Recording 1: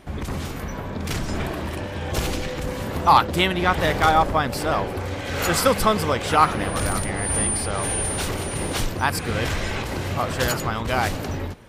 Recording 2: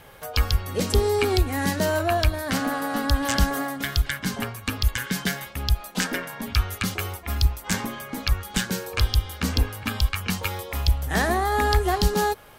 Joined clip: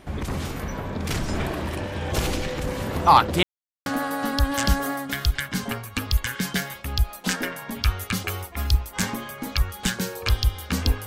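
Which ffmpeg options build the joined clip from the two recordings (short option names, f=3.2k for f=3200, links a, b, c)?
-filter_complex "[0:a]apad=whole_dur=11.06,atrim=end=11.06,asplit=2[a][b];[a]atrim=end=3.43,asetpts=PTS-STARTPTS,afade=t=out:st=3.426:d=0.004:c=hsin[c];[b]atrim=start=3.43:end=3.86,asetpts=PTS-STARTPTS,volume=0[d];[1:a]atrim=start=2.57:end=9.77,asetpts=PTS-STARTPTS,afade=t=in:d=0.004:c=hsin[e];[c][d][e]concat=n=3:v=0:a=1"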